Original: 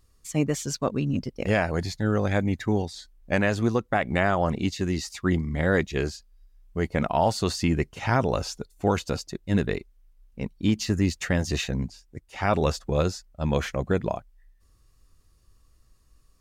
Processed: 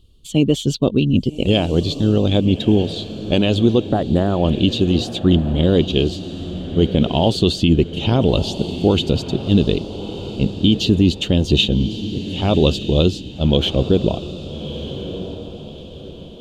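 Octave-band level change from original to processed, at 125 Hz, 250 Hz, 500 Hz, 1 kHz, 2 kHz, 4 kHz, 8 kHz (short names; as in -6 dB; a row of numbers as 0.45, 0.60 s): +9.5, +10.5, +8.0, +0.5, -1.5, +15.0, 0.0 dB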